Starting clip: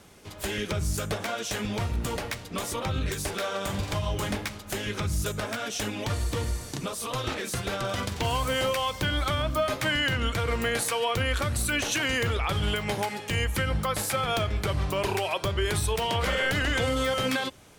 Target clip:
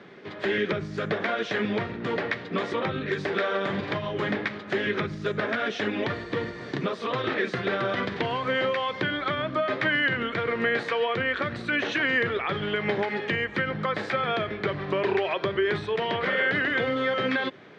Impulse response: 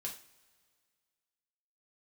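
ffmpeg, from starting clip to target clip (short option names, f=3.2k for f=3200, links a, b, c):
-af "acompressor=threshold=-28dB:ratio=6,highpass=f=140:w=0.5412,highpass=f=140:w=1.3066,equalizer=f=390:t=q:w=4:g=6,equalizer=f=870:t=q:w=4:g=-4,equalizer=f=1.8k:t=q:w=4:g=7,equalizer=f=2.8k:t=q:w=4:g=-5,lowpass=f=3.5k:w=0.5412,lowpass=f=3.5k:w=1.3066,volume=5.5dB"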